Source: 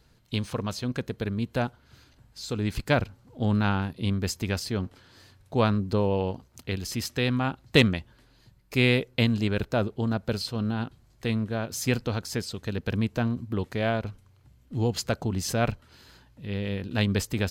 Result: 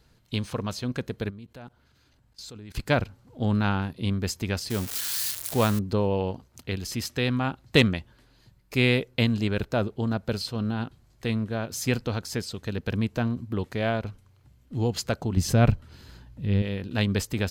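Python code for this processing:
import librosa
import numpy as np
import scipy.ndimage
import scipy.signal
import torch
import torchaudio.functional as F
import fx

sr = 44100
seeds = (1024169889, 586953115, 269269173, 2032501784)

y = fx.level_steps(x, sr, step_db=21, at=(1.29, 2.74), fade=0.02)
y = fx.crossing_spikes(y, sr, level_db=-20.0, at=(4.7, 5.79))
y = fx.low_shelf(y, sr, hz=260.0, db=11.5, at=(15.37, 16.62))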